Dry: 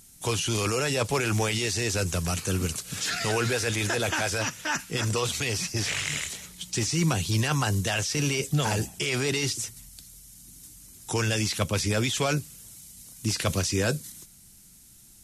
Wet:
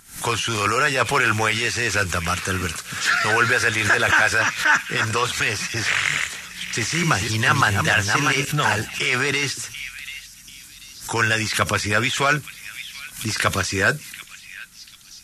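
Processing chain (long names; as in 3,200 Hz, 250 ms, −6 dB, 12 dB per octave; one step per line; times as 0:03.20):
0:06.16–0:08.45: delay that plays each chunk backwards 433 ms, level −3.5 dB
parametric band 1,500 Hz +15 dB 1.6 octaves
echo through a band-pass that steps 738 ms, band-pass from 2,800 Hz, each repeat 0.7 octaves, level −10 dB
background raised ahead of every attack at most 130 dB per second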